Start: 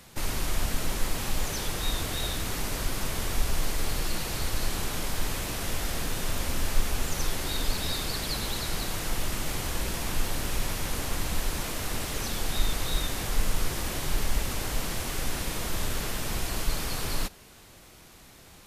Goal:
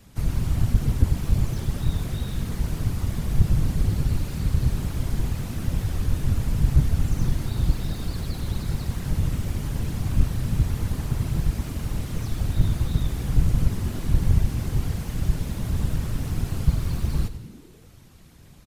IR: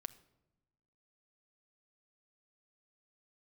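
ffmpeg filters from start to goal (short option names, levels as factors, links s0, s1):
-filter_complex "[0:a]bass=f=250:g=13,treble=f=4000:g=0,acrossover=split=750|1600[s0][s1][s2];[s2]asoftclip=type=tanh:threshold=0.0178[s3];[s0][s1][s3]amix=inputs=3:normalize=0,afftfilt=real='hypot(re,im)*cos(2*PI*random(0))':imag='hypot(re,im)*sin(2*PI*random(1))':win_size=512:overlap=0.75,volume=2.51,asoftclip=hard,volume=0.398,asplit=7[s4][s5][s6][s7][s8][s9][s10];[s5]adelay=97,afreqshift=-84,volume=0.211[s11];[s6]adelay=194,afreqshift=-168,volume=0.119[s12];[s7]adelay=291,afreqshift=-252,volume=0.0661[s13];[s8]adelay=388,afreqshift=-336,volume=0.0372[s14];[s9]adelay=485,afreqshift=-420,volume=0.0209[s15];[s10]adelay=582,afreqshift=-504,volume=0.0116[s16];[s4][s11][s12][s13][s14][s15][s16]amix=inputs=7:normalize=0"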